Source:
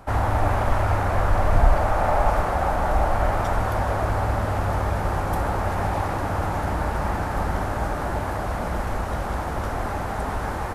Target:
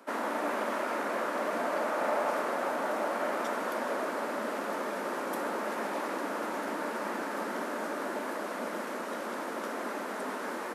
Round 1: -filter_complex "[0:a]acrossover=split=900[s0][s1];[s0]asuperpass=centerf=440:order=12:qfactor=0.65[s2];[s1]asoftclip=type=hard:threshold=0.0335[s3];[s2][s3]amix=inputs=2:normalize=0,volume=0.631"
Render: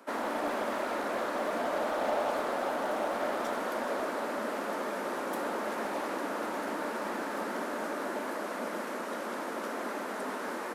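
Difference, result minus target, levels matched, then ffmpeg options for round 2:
hard clipper: distortion +38 dB
-filter_complex "[0:a]acrossover=split=900[s0][s1];[s0]asuperpass=centerf=440:order=12:qfactor=0.65[s2];[s1]asoftclip=type=hard:threshold=0.112[s3];[s2][s3]amix=inputs=2:normalize=0,volume=0.631"

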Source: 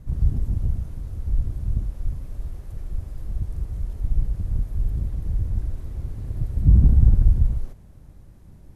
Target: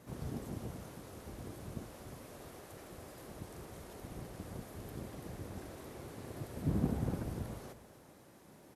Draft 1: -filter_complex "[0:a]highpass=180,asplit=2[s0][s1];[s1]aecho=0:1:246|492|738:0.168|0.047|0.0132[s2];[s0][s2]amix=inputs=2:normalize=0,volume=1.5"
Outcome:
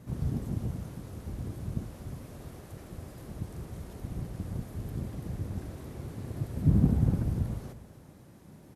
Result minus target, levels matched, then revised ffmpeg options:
500 Hz band -8.5 dB
-filter_complex "[0:a]highpass=370,asplit=2[s0][s1];[s1]aecho=0:1:246|492|738:0.168|0.047|0.0132[s2];[s0][s2]amix=inputs=2:normalize=0,volume=1.5"

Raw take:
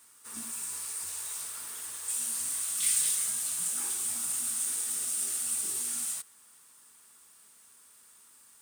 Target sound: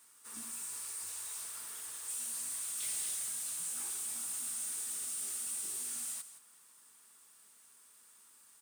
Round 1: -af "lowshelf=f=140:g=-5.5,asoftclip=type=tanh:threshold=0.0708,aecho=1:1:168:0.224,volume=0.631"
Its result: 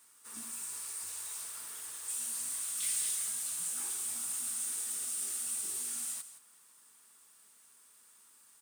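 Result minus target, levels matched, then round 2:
saturation: distortion -7 dB
-af "lowshelf=f=140:g=-5.5,asoftclip=type=tanh:threshold=0.0299,aecho=1:1:168:0.224,volume=0.631"

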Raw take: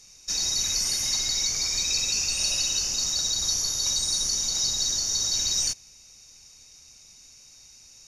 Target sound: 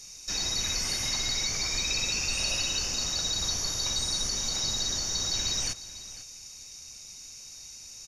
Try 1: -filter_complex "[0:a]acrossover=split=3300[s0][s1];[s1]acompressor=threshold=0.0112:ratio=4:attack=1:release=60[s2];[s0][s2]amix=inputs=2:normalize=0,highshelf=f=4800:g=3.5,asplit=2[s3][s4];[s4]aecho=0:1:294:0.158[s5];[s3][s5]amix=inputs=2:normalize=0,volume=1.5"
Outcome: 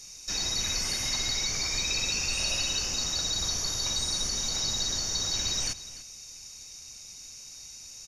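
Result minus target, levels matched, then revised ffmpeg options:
echo 204 ms early
-filter_complex "[0:a]acrossover=split=3300[s0][s1];[s1]acompressor=threshold=0.0112:ratio=4:attack=1:release=60[s2];[s0][s2]amix=inputs=2:normalize=0,highshelf=f=4800:g=3.5,asplit=2[s3][s4];[s4]aecho=0:1:498:0.158[s5];[s3][s5]amix=inputs=2:normalize=0,volume=1.5"

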